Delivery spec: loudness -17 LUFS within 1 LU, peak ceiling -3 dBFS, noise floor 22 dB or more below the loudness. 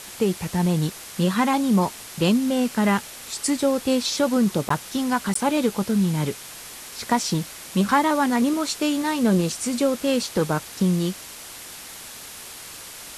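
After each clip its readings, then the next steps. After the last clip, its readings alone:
dropouts 2; longest dropout 14 ms; noise floor -40 dBFS; noise floor target -45 dBFS; loudness -22.5 LUFS; peak -6.0 dBFS; loudness target -17.0 LUFS
-> interpolate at 4.69/5.34, 14 ms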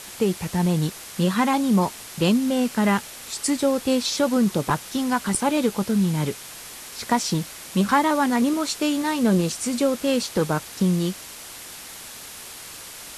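dropouts 0; noise floor -40 dBFS; noise floor target -45 dBFS
-> noise print and reduce 6 dB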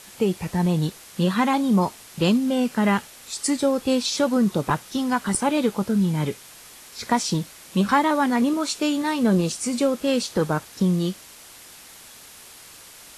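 noise floor -46 dBFS; loudness -23.0 LUFS; peak -6.0 dBFS; loudness target -17.0 LUFS
-> gain +6 dB; limiter -3 dBFS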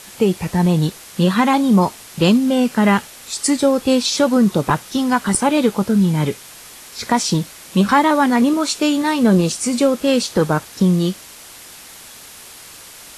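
loudness -17.0 LUFS; peak -3.0 dBFS; noise floor -40 dBFS

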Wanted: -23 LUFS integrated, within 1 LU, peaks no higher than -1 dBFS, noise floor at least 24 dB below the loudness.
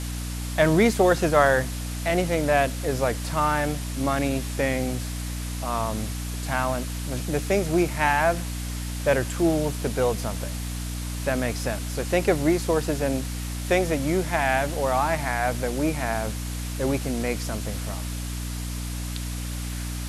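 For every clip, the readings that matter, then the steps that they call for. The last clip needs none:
hum 60 Hz; harmonics up to 300 Hz; hum level -29 dBFS; noise floor -31 dBFS; noise floor target -50 dBFS; loudness -25.5 LUFS; peak -5.0 dBFS; loudness target -23.0 LUFS
-> notches 60/120/180/240/300 Hz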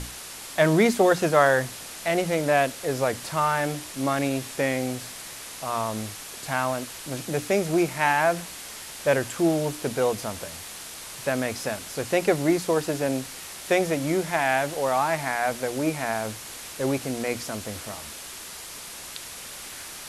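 hum none; noise floor -40 dBFS; noise floor target -50 dBFS
-> denoiser 10 dB, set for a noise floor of -40 dBFS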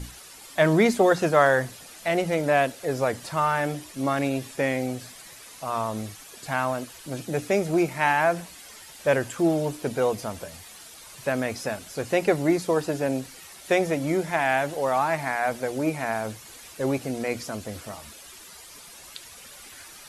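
noise floor -46 dBFS; noise floor target -50 dBFS
-> denoiser 6 dB, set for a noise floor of -46 dBFS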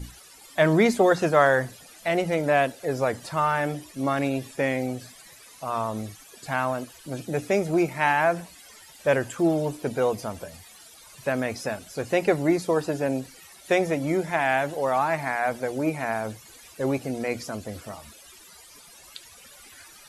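noise floor -50 dBFS; loudness -25.5 LUFS; peak -5.5 dBFS; loudness target -23.0 LUFS
-> gain +2.5 dB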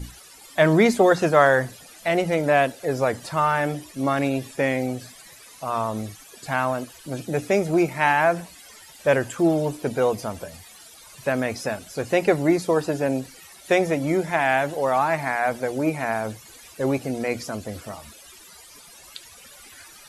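loudness -23.0 LUFS; peak -3.0 dBFS; noise floor -47 dBFS

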